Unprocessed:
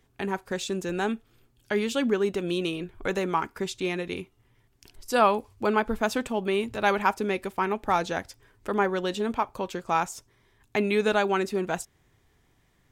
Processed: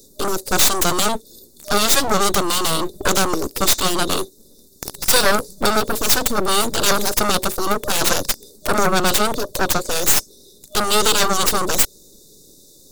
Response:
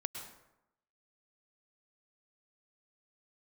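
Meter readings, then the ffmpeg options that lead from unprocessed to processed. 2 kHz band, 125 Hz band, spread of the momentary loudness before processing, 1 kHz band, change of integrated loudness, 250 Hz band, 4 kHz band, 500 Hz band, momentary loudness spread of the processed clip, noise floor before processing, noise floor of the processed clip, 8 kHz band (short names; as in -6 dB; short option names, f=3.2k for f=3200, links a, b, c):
+8.0 dB, +7.5 dB, 10 LU, +6.5 dB, +9.5 dB, +4.0 dB, +17.5 dB, +4.5 dB, 8 LU, -66 dBFS, -49 dBFS, +23.5 dB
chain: -filter_complex "[0:a]afftfilt=real='re*(1-between(b*sr/4096,610,3500))':imag='im*(1-between(b*sr/4096,610,3500))':win_size=4096:overlap=0.75,highpass=f=54:w=0.5412,highpass=f=54:w=1.3066,bass=f=250:g=-5,treble=f=4k:g=9,apsyclip=29.5dB,acrossover=split=250|3500[a][b][c];[a]aeval=exprs='abs(val(0))':c=same[d];[d][b][c]amix=inputs=3:normalize=0,aeval=exprs='2.11*(cos(1*acos(clip(val(0)/2.11,-1,1)))-cos(1*PI/2))+0.531*(cos(4*acos(clip(val(0)/2.11,-1,1)))-cos(4*PI/2))+0.335*(cos(5*acos(clip(val(0)/2.11,-1,1)))-cos(5*PI/2))+0.944*(cos(7*acos(clip(val(0)/2.11,-1,1)))-cos(7*PI/2))+0.266*(cos(8*acos(clip(val(0)/2.11,-1,1)))-cos(8*PI/2))':c=same,volume=-11.5dB"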